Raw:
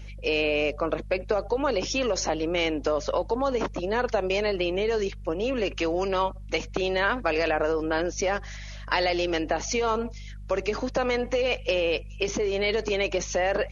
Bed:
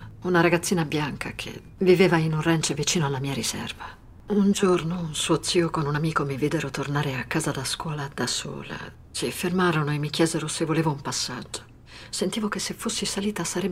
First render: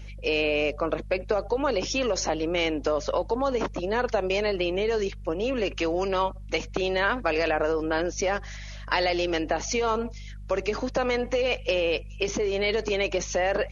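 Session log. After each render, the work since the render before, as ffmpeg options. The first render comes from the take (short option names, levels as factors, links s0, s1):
-af anull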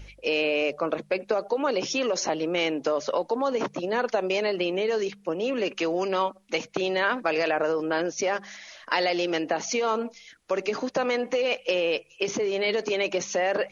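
-af "bandreject=f=50:t=h:w=4,bandreject=f=100:t=h:w=4,bandreject=f=150:t=h:w=4,bandreject=f=200:t=h:w=4"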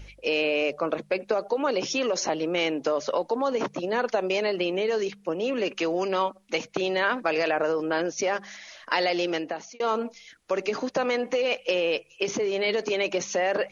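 -filter_complex "[0:a]asplit=2[s0][s1];[s0]atrim=end=9.8,asetpts=PTS-STARTPTS,afade=t=out:st=9.27:d=0.53[s2];[s1]atrim=start=9.8,asetpts=PTS-STARTPTS,afade=t=in:d=0.004:c=hsin[s3];[s2][s3]concat=n=2:v=0:a=1"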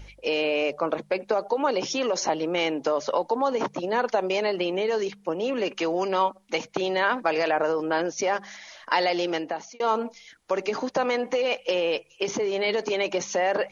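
-af "equalizer=f=880:t=o:w=0.48:g=5.5,bandreject=f=2600:w=23"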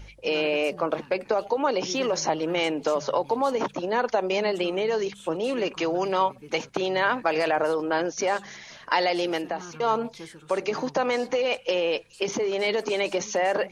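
-filter_complex "[1:a]volume=0.0891[s0];[0:a][s0]amix=inputs=2:normalize=0"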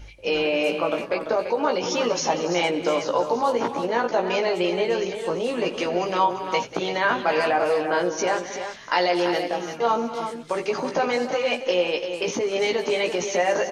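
-filter_complex "[0:a]asplit=2[s0][s1];[s1]adelay=17,volume=0.631[s2];[s0][s2]amix=inputs=2:normalize=0,aecho=1:1:87|189|281|340:0.126|0.168|0.188|0.376"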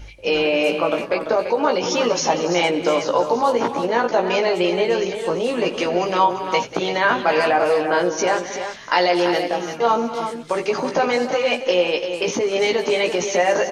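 -af "volume=1.58"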